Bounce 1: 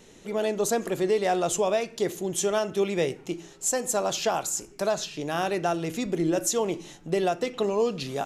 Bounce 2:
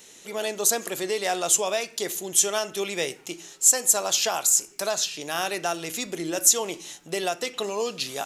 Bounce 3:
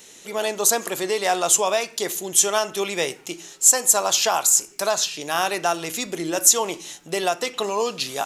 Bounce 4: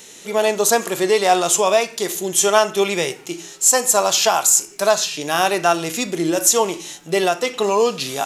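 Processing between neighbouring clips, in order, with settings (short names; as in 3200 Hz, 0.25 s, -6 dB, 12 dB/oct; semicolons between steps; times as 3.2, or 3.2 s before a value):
tilt +3.5 dB/oct
dynamic EQ 1000 Hz, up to +6 dB, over -42 dBFS, Q 1.7; gain +3 dB
harmonic-percussive split harmonic +9 dB; gain -1 dB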